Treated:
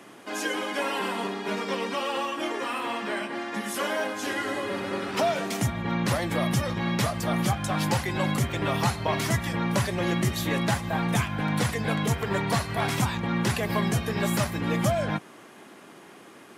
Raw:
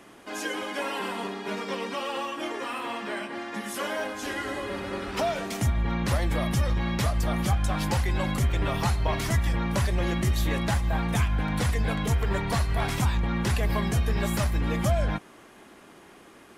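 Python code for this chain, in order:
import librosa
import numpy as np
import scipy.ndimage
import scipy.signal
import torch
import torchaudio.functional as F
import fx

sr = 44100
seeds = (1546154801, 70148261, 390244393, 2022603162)

y = scipy.signal.sosfilt(scipy.signal.butter(4, 110.0, 'highpass', fs=sr, output='sos'), x)
y = F.gain(torch.from_numpy(y), 2.5).numpy()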